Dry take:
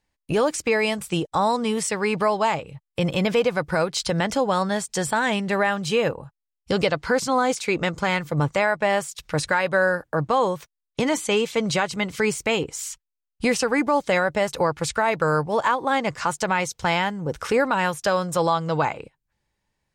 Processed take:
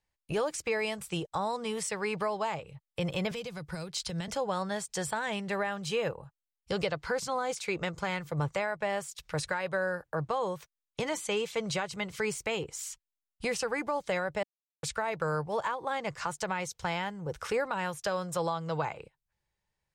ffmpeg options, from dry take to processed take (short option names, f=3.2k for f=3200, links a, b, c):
-filter_complex "[0:a]asettb=1/sr,asplit=3[a][b][c];[a]atrim=end=3.314[d];[b]atrim=start=3.31:end=4.28,asetpts=PTS-STARTPTS,afade=t=in:d=0.004:c=qsin,afade=t=out:st=0.966:d=0.004:c=qsin,acrossover=split=290|3000[e][f][g];[f]acompressor=threshold=-35dB:ratio=5:attack=3.2:release=140:knee=2.83:detection=peak[h];[e][h][g]amix=inputs=3:normalize=0[i];[c]atrim=start=4.276[j];[d][i]acrossfade=d=0.004:c1=hsin:c2=qsin[k];[k][j]acrossfade=d=0.004:c1=qsin:c2=hsin,asplit=3[l][m][n];[l]atrim=end=14.43,asetpts=PTS-STARTPTS,afade=t=out:st=14.426:d=0.004:c=hsin[o];[m]atrim=start=14.43:end=14.83,asetpts=PTS-STARTPTS,volume=0[p];[n]atrim=start=14.83,asetpts=PTS-STARTPTS,afade=t=in:d=0.004:c=hsin[q];[o][p][q]concat=n=3:v=0:a=1,equalizer=f=260:t=o:w=0.47:g=-11.5,acrossover=split=470[r][s];[s]acompressor=threshold=-23dB:ratio=3[t];[r][t]amix=inputs=2:normalize=0,volume=-7.5dB"